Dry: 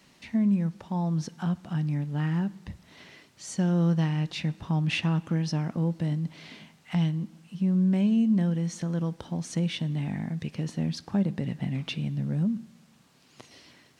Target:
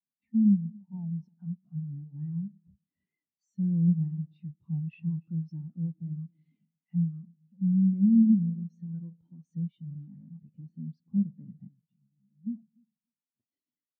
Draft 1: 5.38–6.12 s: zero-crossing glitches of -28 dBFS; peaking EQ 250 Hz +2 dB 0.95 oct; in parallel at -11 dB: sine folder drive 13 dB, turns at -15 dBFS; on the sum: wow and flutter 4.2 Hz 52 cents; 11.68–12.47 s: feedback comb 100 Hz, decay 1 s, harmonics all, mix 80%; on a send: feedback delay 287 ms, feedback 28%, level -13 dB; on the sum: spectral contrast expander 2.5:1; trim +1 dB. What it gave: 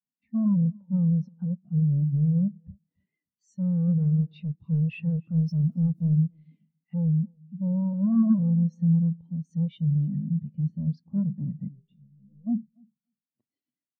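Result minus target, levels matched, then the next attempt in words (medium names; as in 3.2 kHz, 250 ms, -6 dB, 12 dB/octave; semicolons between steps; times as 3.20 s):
sine folder: distortion -15 dB
5.38–6.12 s: zero-crossing glitches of -28 dBFS; peaking EQ 250 Hz +2 dB 0.95 oct; in parallel at -11 dB: sine folder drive 13 dB, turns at -26.5 dBFS; on the sum: wow and flutter 4.2 Hz 52 cents; 11.68–12.47 s: feedback comb 100 Hz, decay 1 s, harmonics all, mix 80%; on a send: feedback delay 287 ms, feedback 28%, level -13 dB; on the sum: spectral contrast expander 2.5:1; trim +1 dB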